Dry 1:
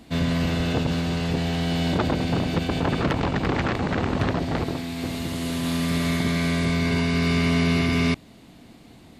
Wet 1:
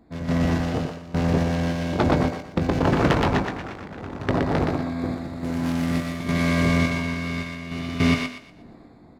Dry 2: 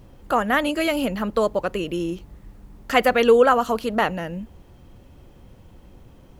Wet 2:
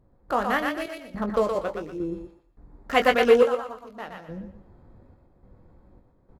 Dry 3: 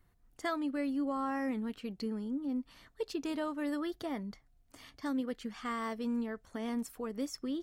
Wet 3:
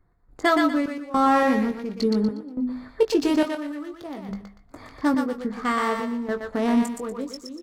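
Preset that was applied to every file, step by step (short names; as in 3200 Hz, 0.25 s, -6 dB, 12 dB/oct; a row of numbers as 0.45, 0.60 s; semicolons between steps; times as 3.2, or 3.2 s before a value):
Wiener smoothing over 15 samples; notches 50/100/150/200/250 Hz; random-step tremolo, depth 90%; doubler 20 ms -8 dB; on a send: thinning echo 0.12 s, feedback 32%, high-pass 600 Hz, level -3 dB; on the sum: match loudness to -24 LUFS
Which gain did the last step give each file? +5.0, -2.0, +17.0 dB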